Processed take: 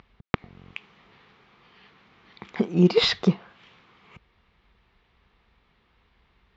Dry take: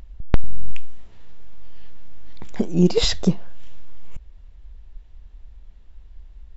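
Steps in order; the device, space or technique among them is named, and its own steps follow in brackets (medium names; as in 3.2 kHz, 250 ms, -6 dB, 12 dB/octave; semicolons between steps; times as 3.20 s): kitchen radio (cabinet simulation 190–4500 Hz, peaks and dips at 290 Hz -7 dB, 600 Hz -7 dB, 1.2 kHz +6 dB, 2.2 kHz +5 dB); trim +2 dB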